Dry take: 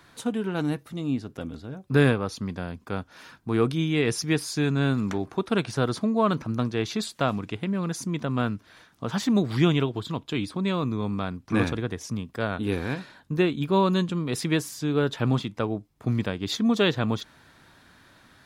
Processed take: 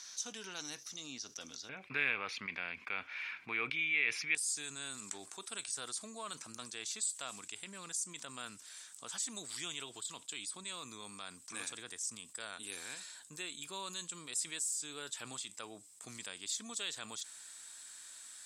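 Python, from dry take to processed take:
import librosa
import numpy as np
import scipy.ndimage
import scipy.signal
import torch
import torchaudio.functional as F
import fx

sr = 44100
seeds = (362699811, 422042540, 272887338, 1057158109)

y = fx.bandpass_q(x, sr, hz=fx.steps((0.0, 5900.0), (1.69, 2300.0), (4.35, 8000.0)), q=9.0)
y = fx.env_flatten(y, sr, amount_pct=50)
y = F.gain(torch.from_numpy(y), 5.0).numpy()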